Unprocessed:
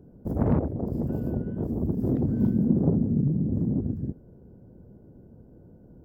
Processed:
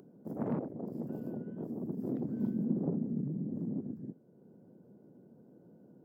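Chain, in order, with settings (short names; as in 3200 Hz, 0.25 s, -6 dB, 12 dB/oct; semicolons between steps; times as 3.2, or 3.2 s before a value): HPF 160 Hz 24 dB/oct; upward compressor, threshold -42 dBFS; gain -9 dB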